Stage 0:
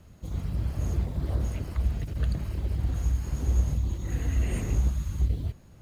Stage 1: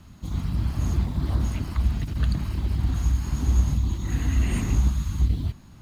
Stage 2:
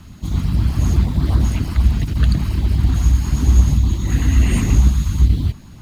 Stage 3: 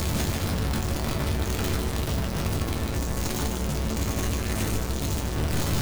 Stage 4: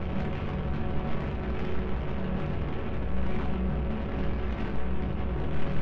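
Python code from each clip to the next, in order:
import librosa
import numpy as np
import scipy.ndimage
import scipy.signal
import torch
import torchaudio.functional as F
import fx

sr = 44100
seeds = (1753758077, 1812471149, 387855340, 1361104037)

y1 = fx.graphic_eq_10(x, sr, hz=(250, 500, 1000, 4000), db=(6, -10, 6, 5))
y1 = F.gain(torch.from_numpy(y1), 3.5).numpy()
y2 = fx.filter_lfo_notch(y1, sr, shape='saw_up', hz=8.3, low_hz=420.0, high_hz=1800.0, q=2.0)
y2 = F.gain(torch.from_numpy(y2), 8.5).numpy()
y3 = np.sign(y2) * np.sqrt(np.mean(np.square(y2)))
y3 = fx.resonator_bank(y3, sr, root=38, chord='major', decay_s=0.24)
y3 = y3 + 10.0 ** (-6.0 / 20.0) * np.pad(y3, (int(149 * sr / 1000.0), 0))[:len(y3)]
y3 = F.gain(torch.from_numpy(y3), -1.5).numpy()
y4 = fx.cvsd(y3, sr, bps=16000)
y4 = 10.0 ** (-31.0 / 20.0) * np.tanh(y4 / 10.0 ** (-31.0 / 20.0))
y4 = fx.room_shoebox(y4, sr, seeds[0], volume_m3=160.0, walls='furnished', distance_m=1.1)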